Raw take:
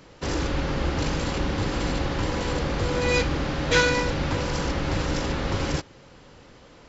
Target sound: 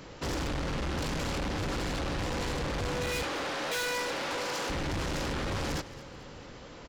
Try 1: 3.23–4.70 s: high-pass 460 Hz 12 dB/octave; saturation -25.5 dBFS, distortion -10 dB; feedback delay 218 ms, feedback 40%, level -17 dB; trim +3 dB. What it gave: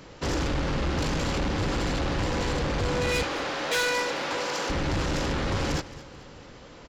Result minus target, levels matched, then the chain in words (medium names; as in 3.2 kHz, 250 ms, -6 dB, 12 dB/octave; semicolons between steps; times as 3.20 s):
saturation: distortion -5 dB
3.23–4.70 s: high-pass 460 Hz 12 dB/octave; saturation -33.5 dBFS, distortion -5 dB; feedback delay 218 ms, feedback 40%, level -17 dB; trim +3 dB